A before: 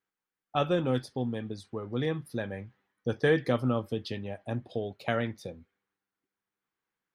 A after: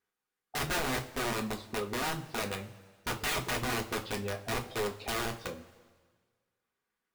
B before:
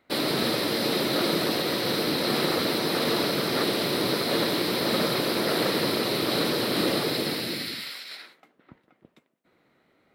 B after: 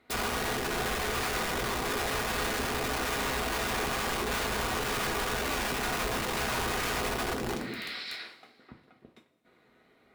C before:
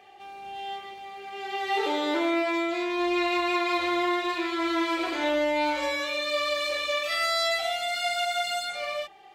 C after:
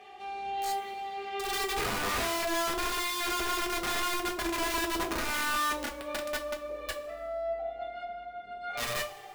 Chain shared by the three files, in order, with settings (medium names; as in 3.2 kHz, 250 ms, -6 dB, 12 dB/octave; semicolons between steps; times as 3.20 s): low-pass that closes with the level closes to 470 Hz, closed at -25 dBFS; integer overflow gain 28.5 dB; two-slope reverb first 0.24 s, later 1.6 s, from -18 dB, DRR 1.5 dB